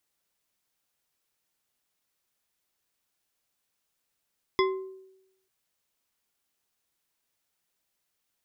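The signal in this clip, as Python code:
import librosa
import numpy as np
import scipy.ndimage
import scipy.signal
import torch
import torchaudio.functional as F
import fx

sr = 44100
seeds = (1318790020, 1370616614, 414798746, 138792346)

y = fx.strike_glass(sr, length_s=0.89, level_db=-20.0, body='bar', hz=380.0, decay_s=0.89, tilt_db=3, modes=5)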